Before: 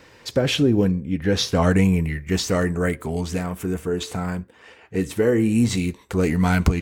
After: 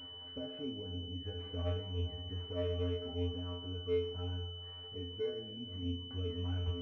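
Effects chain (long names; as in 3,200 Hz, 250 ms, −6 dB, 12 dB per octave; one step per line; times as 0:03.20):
dynamic equaliser 520 Hz, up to +5 dB, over −33 dBFS, Q 1.8
upward compression, threshold −23 dBFS
high-frequency loss of the air 290 metres
comb and all-pass reverb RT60 1.9 s, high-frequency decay 0.75×, pre-delay 35 ms, DRR 9.5 dB
downward compressor, threshold −19 dBFS, peak gain reduction 8.5 dB
flanger 1.6 Hz, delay 7.2 ms, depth 4 ms, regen −71%
tuned comb filter 88 Hz, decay 0.45 s, harmonics odd, mix 100%
switching amplifier with a slow clock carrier 3,000 Hz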